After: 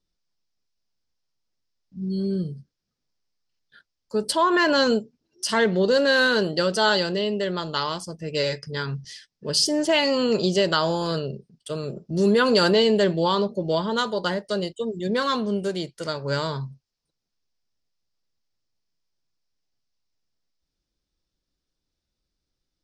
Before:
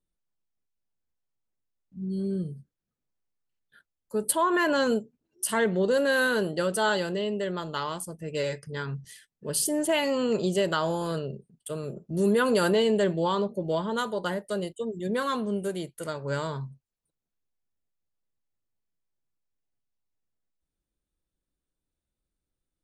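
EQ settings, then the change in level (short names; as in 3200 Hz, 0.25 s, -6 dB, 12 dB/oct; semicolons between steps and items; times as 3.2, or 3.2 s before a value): synth low-pass 5200 Hz, resonance Q 4.2; +4.0 dB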